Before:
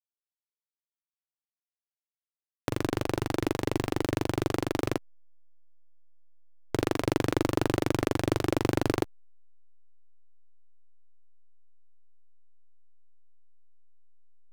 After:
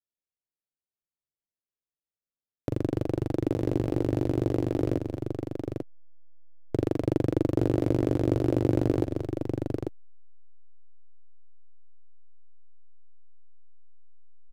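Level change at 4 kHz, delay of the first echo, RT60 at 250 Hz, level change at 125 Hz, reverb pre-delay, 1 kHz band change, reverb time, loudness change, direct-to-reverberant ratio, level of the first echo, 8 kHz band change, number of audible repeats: −11.5 dB, 213 ms, no reverb audible, +4.5 dB, no reverb audible, −7.0 dB, no reverb audible, +1.0 dB, no reverb audible, −17.0 dB, below −10 dB, 2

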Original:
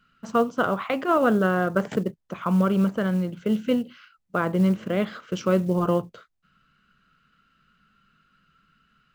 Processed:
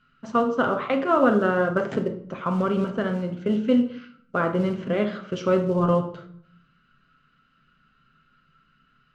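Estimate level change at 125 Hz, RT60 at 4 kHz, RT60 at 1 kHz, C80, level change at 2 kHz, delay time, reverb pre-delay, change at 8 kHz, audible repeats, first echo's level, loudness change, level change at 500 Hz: −2.0 dB, 0.45 s, 0.60 s, 14.0 dB, +0.5 dB, no echo audible, 8 ms, can't be measured, no echo audible, no echo audible, +0.5 dB, +2.0 dB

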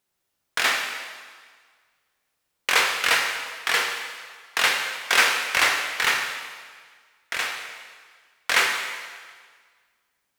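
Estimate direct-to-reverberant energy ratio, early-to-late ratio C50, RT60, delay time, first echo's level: 2.0 dB, 4.5 dB, 1.7 s, no echo audible, no echo audible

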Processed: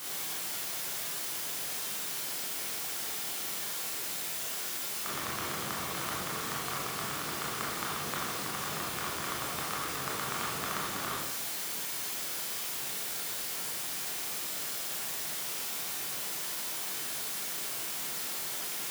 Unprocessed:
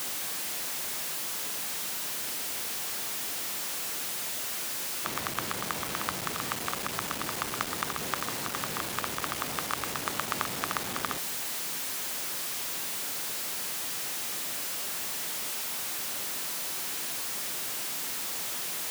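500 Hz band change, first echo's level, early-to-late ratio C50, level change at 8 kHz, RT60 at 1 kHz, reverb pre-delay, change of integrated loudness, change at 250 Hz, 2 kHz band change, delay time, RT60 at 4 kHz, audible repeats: −1.5 dB, no echo audible, 0.5 dB, −2.0 dB, 0.80 s, 20 ms, −2.0 dB, −2.0 dB, −2.0 dB, no echo audible, 0.80 s, no echo audible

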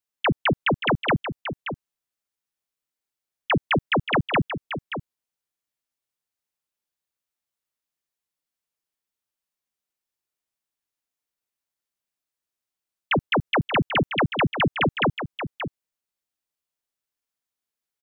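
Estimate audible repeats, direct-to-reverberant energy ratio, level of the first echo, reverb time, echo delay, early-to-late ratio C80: 1, no reverb audible, −9.5 dB, no reverb audible, 579 ms, no reverb audible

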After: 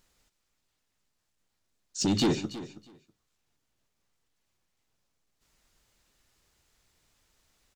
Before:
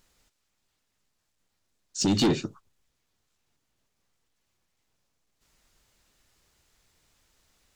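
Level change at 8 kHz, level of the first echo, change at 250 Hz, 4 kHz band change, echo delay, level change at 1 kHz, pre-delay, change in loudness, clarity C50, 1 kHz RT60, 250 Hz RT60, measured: −2.5 dB, −15.0 dB, −2.5 dB, −2.5 dB, 323 ms, −2.5 dB, no reverb audible, −3.0 dB, no reverb audible, no reverb audible, no reverb audible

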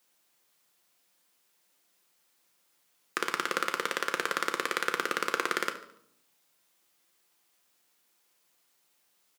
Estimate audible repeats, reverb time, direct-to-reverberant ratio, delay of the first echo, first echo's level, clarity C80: 3, 0.70 s, 6.0 dB, 72 ms, −15.5 dB, 15.5 dB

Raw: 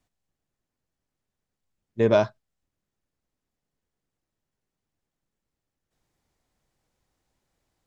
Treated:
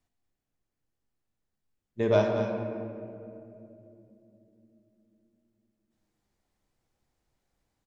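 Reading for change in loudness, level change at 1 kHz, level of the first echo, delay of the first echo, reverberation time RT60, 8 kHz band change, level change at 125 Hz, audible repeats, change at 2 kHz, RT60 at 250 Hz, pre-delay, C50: −5.5 dB, −3.0 dB, −9.5 dB, 231 ms, 2.8 s, can't be measured, −0.5 dB, 1, −3.0 dB, 5.0 s, 10 ms, 2.5 dB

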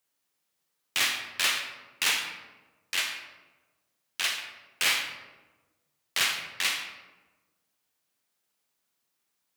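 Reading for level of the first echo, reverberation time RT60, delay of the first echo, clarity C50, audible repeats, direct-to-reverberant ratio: no echo audible, 1.2 s, no echo audible, 5.0 dB, no echo audible, 3.5 dB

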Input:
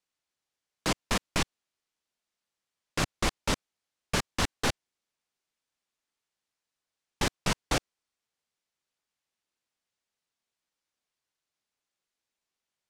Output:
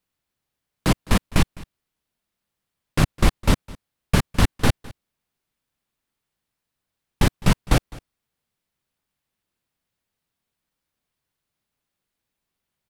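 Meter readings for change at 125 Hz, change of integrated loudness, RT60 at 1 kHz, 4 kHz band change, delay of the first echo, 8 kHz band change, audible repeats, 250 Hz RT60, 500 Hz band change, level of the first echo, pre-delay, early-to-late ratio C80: +14.5 dB, +8.0 dB, no reverb audible, +3.0 dB, 208 ms, +2.0 dB, 1, no reverb audible, +6.5 dB, −21.5 dB, no reverb audible, no reverb audible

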